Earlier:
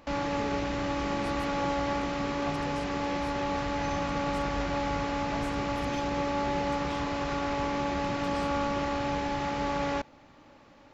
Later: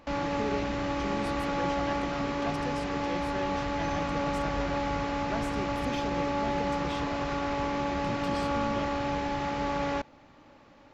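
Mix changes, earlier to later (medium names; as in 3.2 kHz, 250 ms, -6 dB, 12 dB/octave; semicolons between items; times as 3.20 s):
speech +6.0 dB; master: add treble shelf 5.7 kHz -4 dB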